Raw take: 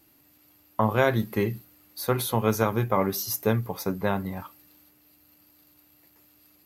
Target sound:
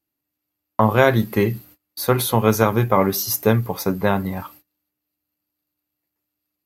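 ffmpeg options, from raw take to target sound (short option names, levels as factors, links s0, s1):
-af "agate=range=0.0398:threshold=0.00282:ratio=16:detection=peak,volume=2.24"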